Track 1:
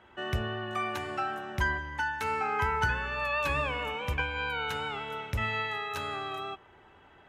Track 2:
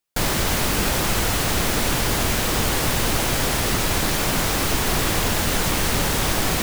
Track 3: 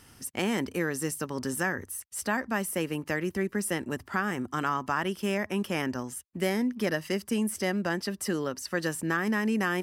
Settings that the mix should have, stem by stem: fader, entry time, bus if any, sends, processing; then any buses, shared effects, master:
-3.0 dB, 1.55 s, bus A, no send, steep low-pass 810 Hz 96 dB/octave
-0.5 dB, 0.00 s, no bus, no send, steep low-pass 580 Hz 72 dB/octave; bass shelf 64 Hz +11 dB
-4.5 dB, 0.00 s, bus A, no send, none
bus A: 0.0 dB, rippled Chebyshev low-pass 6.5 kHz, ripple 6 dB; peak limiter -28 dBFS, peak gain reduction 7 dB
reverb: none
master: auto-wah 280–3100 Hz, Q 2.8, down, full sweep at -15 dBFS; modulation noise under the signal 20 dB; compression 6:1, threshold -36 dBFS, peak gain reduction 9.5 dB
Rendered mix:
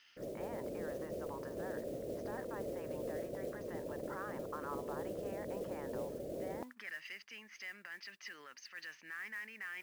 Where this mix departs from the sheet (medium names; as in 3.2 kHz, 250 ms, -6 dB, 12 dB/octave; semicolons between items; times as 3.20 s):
stem 1: muted; stem 2: missing bass shelf 64 Hz +11 dB; stem 3 -4.5 dB -> +4.5 dB